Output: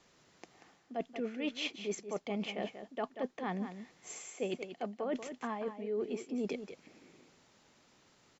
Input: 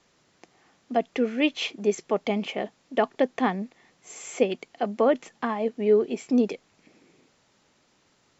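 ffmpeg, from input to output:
-af "areverse,acompressor=threshold=0.0224:ratio=6,areverse,aecho=1:1:186:0.316,volume=0.841"

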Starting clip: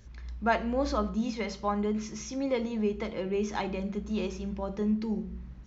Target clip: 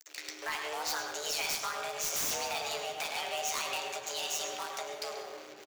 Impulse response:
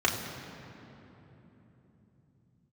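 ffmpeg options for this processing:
-filter_complex "[0:a]aeval=exprs='sgn(val(0))*max(abs(val(0))-0.00447,0)':c=same,acrossover=split=150[s0][s1];[s1]acompressor=threshold=0.02:ratio=6[s2];[s0][s2]amix=inputs=2:normalize=0,alimiter=level_in=2.24:limit=0.0631:level=0:latency=1:release=196,volume=0.447,areverse,acompressor=mode=upward:threshold=0.00178:ratio=2.5,areverse,aderivative,aeval=exprs='val(0)*sin(2*PI*76*n/s)':c=same,afreqshift=290,aeval=exprs='0.0158*sin(PI/2*7.94*val(0)/0.0158)':c=same,asplit=2[s3][s4];[s4]adelay=13,volume=0.282[s5];[s3][s5]amix=inputs=2:normalize=0,asplit=5[s6][s7][s8][s9][s10];[s7]adelay=197,afreqshift=-96,volume=0.0708[s11];[s8]adelay=394,afreqshift=-192,volume=0.0412[s12];[s9]adelay=591,afreqshift=-288,volume=0.0237[s13];[s10]adelay=788,afreqshift=-384,volume=0.0138[s14];[s6][s11][s12][s13][s14]amix=inputs=5:normalize=0,asplit=2[s15][s16];[1:a]atrim=start_sample=2205,adelay=102[s17];[s16][s17]afir=irnorm=-1:irlink=0,volume=0.141[s18];[s15][s18]amix=inputs=2:normalize=0,volume=2.24"

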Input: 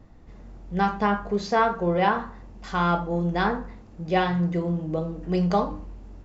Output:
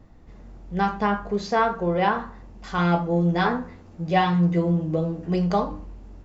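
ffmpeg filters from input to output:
-filter_complex "[0:a]asettb=1/sr,asplit=3[s0][s1][s2];[s0]atrim=end=2.774[s3];[s1]atrim=start=2.77:end=5.34,asetpts=PTS-STARTPTS,afade=t=in:d=0.004:c=qsin,afade=t=out:st=2.566:d=0.004:c=qsin,asplit=2[s4][s5];[s5]adelay=12,volume=0.75[s6];[s4][s6]amix=inputs=2:normalize=0,atrim=end_sample=113337[s7];[s2]atrim=start=5.336[s8];[s3][s7]acrossfade=d=0.004:c1=hsin:c2=qsin[s9];[s9][s8]acrossfade=d=0.004:c1=qsin:c2=hsin"

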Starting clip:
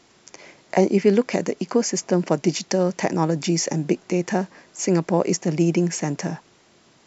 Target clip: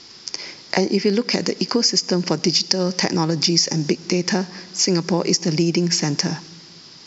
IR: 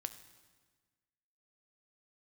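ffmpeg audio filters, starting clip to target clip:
-filter_complex "[0:a]lowpass=f=5000:t=q:w=6.8,equalizer=f=640:w=2.6:g=-7,asplit=2[s0][s1];[1:a]atrim=start_sample=2205,highshelf=f=6200:g=8.5[s2];[s1][s2]afir=irnorm=-1:irlink=0,volume=0.562[s3];[s0][s3]amix=inputs=2:normalize=0,acompressor=threshold=0.1:ratio=3,volume=1.5"

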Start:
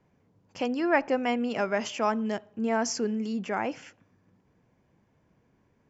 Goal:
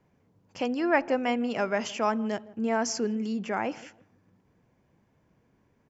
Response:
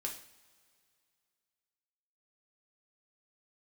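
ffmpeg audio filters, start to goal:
-filter_complex "[0:a]asplit=2[s0][s1];[s1]adelay=161,lowpass=f=800:p=1,volume=0.126,asplit=2[s2][s3];[s3]adelay=161,lowpass=f=800:p=1,volume=0.33,asplit=2[s4][s5];[s5]adelay=161,lowpass=f=800:p=1,volume=0.33[s6];[s0][s2][s4][s6]amix=inputs=4:normalize=0"

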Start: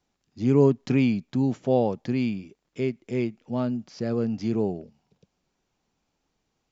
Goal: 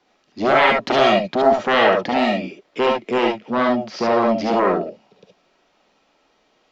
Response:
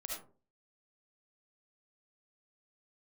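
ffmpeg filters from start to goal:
-filter_complex "[0:a]aeval=exprs='0.447*sin(PI/2*7.08*val(0)/0.447)':c=same,acrossover=split=240 4900:gain=0.0891 1 0.0891[s0][s1][s2];[s0][s1][s2]amix=inputs=3:normalize=0[s3];[1:a]atrim=start_sample=2205,atrim=end_sample=3528[s4];[s3][s4]afir=irnorm=-1:irlink=0"

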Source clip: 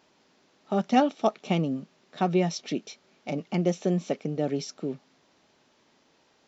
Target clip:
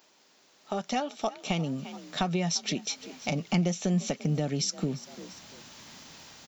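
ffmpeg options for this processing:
-filter_complex "[0:a]asplit=3[s0][s1][s2];[s1]adelay=343,afreqshift=44,volume=0.0794[s3];[s2]adelay=686,afreqshift=88,volume=0.0254[s4];[s0][s3][s4]amix=inputs=3:normalize=0,dynaudnorm=f=260:g=7:m=5.31,aemphasis=mode=production:type=bsi,acompressor=threshold=0.0355:ratio=3,asubboost=boost=11.5:cutoff=120"

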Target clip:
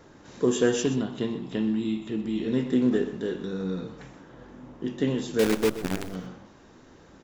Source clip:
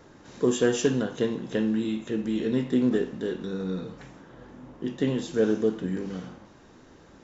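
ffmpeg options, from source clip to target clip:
-filter_complex "[0:a]asettb=1/sr,asplit=3[s0][s1][s2];[s0]atrim=end=0.834[s3];[s1]atrim=start=0.83:end=2.48,asetpts=PTS-STARTPTS,afade=t=in:d=0.004:c=qsin,afade=t=out:st=1.646:d=0.004:c=qsin,equalizer=f=500:t=o:w=0.33:g=-12,equalizer=f=1600:t=o:w=0.33:g=-10,equalizer=f=6300:t=o:w=0.33:g=-11[s4];[s2]atrim=start=2.476[s5];[s3][s4]acrossfade=d=0.004:c1=hsin:c2=qsin[s6];[s6][s5]acrossfade=d=0.004:c1=qsin:c2=hsin,asettb=1/sr,asplit=3[s7][s8][s9];[s7]atrim=end=5.394[s10];[s8]atrim=start=5.39:end=6.14,asetpts=PTS-STARTPTS,afade=t=in:d=0.004:c=qsin,afade=t=out:st=0.746:d=0.004:c=qsin,acrusher=bits=5:dc=4:mix=0:aa=0.000001[s11];[s9]atrim=start=6.136[s12];[s10][s11]acrossfade=d=0.004:c1=hsin:c2=qsin[s13];[s13][s12]acrossfade=d=0.004:c1=qsin:c2=hsin,aecho=1:1:125:0.2"

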